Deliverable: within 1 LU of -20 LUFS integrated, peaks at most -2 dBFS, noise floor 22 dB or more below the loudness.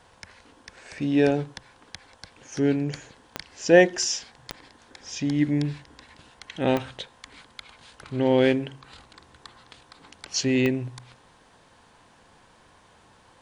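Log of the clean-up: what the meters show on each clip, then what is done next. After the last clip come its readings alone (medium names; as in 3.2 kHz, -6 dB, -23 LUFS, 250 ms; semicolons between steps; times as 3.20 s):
clicks found 4; loudness -24.0 LUFS; peak level -3.0 dBFS; loudness target -20.0 LUFS
-> de-click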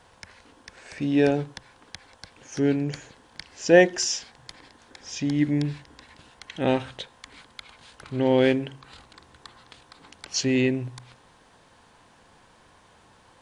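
clicks found 2; loudness -24.0 LUFS; peak level -3.0 dBFS; loudness target -20.0 LUFS
-> trim +4 dB; peak limiter -2 dBFS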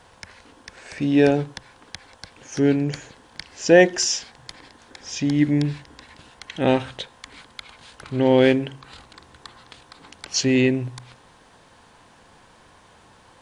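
loudness -20.5 LUFS; peak level -2.0 dBFS; noise floor -53 dBFS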